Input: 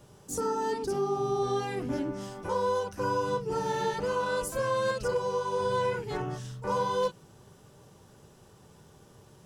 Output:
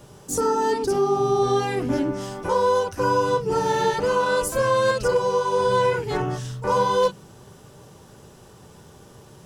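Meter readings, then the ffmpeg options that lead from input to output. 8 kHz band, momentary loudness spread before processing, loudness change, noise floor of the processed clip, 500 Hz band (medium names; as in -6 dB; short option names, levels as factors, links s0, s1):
+8.5 dB, 5 LU, +8.5 dB, -49 dBFS, +8.5 dB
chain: -af "bandreject=f=50:t=h:w=6,bandreject=f=100:t=h:w=6,bandreject=f=150:t=h:w=6,bandreject=f=200:t=h:w=6,volume=2.66"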